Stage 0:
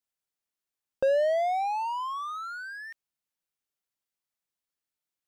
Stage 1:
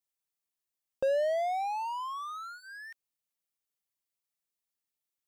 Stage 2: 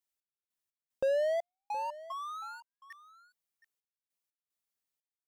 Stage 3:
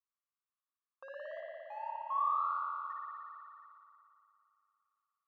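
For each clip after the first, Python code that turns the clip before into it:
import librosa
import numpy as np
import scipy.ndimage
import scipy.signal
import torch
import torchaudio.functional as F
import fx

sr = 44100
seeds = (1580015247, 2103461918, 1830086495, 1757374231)

y1 = fx.high_shelf(x, sr, hz=6500.0, db=6.0)
y1 = fx.notch(y1, sr, hz=1500.0, q=8.4)
y1 = y1 * 10.0 ** (-4.0 / 20.0)
y2 = fx.step_gate(y1, sr, bpm=150, pattern='xx...xx..xxx', floor_db=-60.0, edge_ms=4.5)
y2 = y2 + 10.0 ** (-17.0 / 20.0) * np.pad(y2, (int(719 * sr / 1000.0), 0))[:len(y2)]
y2 = y2 * 10.0 ** (-1.0 / 20.0)
y3 = fx.ladder_bandpass(y2, sr, hz=1200.0, resonance_pct=80)
y3 = fx.rev_spring(y3, sr, rt60_s=2.8, pass_ms=(56,), chirp_ms=40, drr_db=-4.5)
y3 = y3 * 10.0 ** (1.0 / 20.0)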